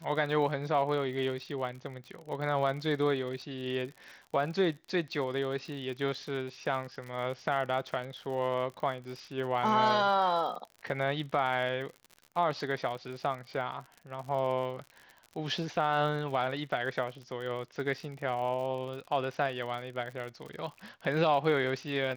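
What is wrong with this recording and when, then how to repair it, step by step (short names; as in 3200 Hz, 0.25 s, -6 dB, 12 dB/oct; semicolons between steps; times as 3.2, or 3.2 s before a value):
crackle 59/s -39 dBFS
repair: de-click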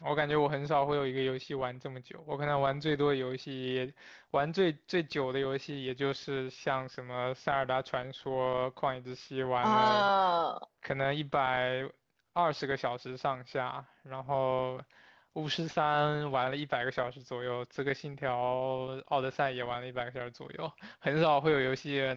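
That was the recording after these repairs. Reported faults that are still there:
none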